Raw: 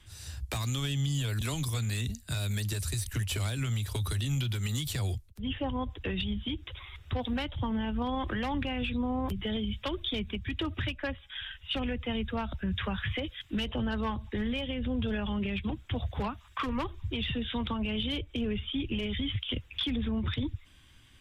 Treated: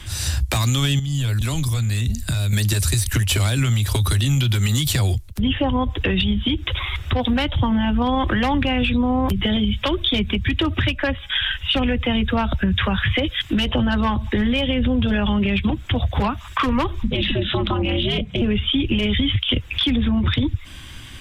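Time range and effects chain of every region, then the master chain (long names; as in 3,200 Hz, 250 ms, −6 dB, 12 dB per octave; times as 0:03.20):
0:00.99–0:02.53: downward compressor 16 to 1, threshold −40 dBFS + low-shelf EQ 89 Hz +11.5 dB
0:17.03–0:18.42: high-shelf EQ 8,300 Hz −9 dB + ring modulation 130 Hz
whole clip: notch filter 440 Hz, Q 12; downward compressor 4 to 1, threshold −38 dBFS; boost into a limiter +29.5 dB; level −9 dB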